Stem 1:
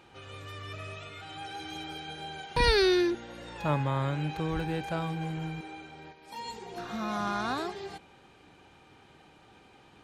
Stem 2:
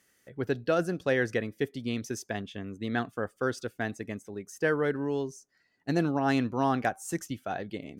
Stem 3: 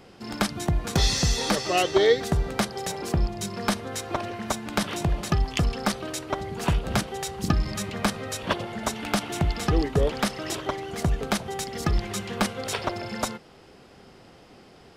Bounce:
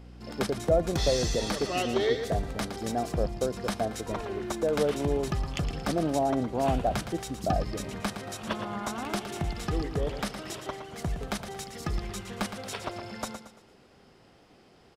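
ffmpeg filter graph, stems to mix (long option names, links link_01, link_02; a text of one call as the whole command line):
ffmpeg -i stem1.wav -i stem2.wav -i stem3.wav -filter_complex "[0:a]lowpass=1200,adelay=1500,volume=-3.5dB[link_01];[1:a]alimiter=limit=-19dB:level=0:latency=1,aeval=exprs='val(0)+0.00631*(sin(2*PI*60*n/s)+sin(2*PI*2*60*n/s)/2+sin(2*PI*3*60*n/s)/3+sin(2*PI*4*60*n/s)/4+sin(2*PI*5*60*n/s)/5)':channel_layout=same,lowpass=frequency=660:width_type=q:width=3.4,volume=-2.5dB,asplit=2[link_02][link_03];[2:a]volume=-7.5dB,asplit=2[link_04][link_05];[link_05]volume=-9.5dB[link_06];[link_03]apad=whole_len=508479[link_07];[link_01][link_07]sidechaincompress=threshold=-41dB:ratio=8:attack=16:release=743[link_08];[link_06]aecho=0:1:114|228|342|456|570:1|0.38|0.144|0.0549|0.0209[link_09];[link_08][link_02][link_04][link_09]amix=inputs=4:normalize=0" out.wav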